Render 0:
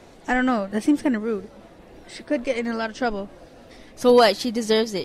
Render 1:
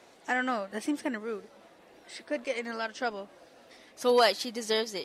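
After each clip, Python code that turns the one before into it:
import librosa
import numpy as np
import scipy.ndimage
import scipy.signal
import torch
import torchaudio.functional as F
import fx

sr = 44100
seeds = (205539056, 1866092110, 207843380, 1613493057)

y = fx.highpass(x, sr, hz=640.0, slope=6)
y = y * librosa.db_to_amplitude(-4.5)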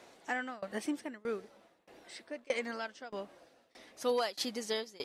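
y = fx.tremolo_shape(x, sr, shape='saw_down', hz=1.6, depth_pct=95)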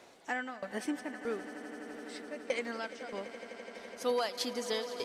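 y = fx.echo_swell(x, sr, ms=84, loudest=8, wet_db=-17.5)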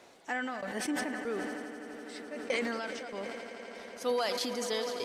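y = fx.sustainer(x, sr, db_per_s=26.0)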